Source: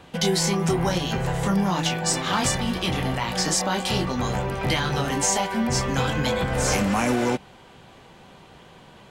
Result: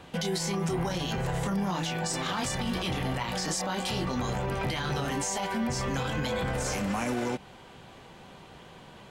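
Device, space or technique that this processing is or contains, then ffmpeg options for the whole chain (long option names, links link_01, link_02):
stacked limiters: -af "alimiter=limit=-15dB:level=0:latency=1:release=215,alimiter=limit=-21dB:level=0:latency=1:release=41,volume=-1dB"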